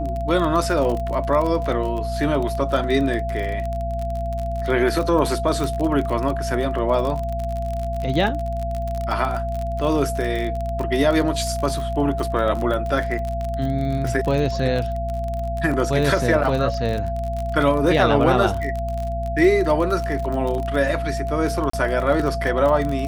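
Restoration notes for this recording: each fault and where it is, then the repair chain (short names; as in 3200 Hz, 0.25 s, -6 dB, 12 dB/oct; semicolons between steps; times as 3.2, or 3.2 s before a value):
crackle 31/s -24 dBFS
hum 60 Hz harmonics 4 -27 dBFS
tone 680 Hz -26 dBFS
5.64 pop
21.7–21.73 gap 34 ms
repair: de-click; de-hum 60 Hz, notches 4; notch 680 Hz, Q 30; interpolate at 21.7, 34 ms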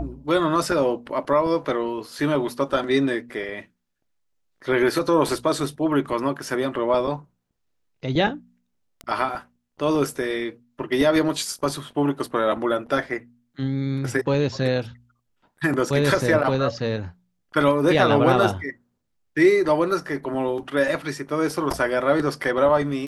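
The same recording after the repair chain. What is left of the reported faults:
none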